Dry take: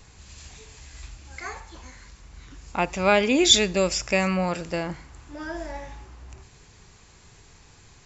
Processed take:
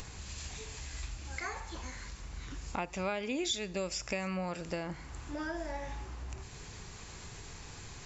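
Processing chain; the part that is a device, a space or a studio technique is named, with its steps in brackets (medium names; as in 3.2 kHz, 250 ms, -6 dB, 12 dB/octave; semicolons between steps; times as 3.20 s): upward and downward compression (upward compressor, threshold -42 dBFS; compression 4:1, threshold -37 dBFS, peak gain reduction 21.5 dB); trim +1.5 dB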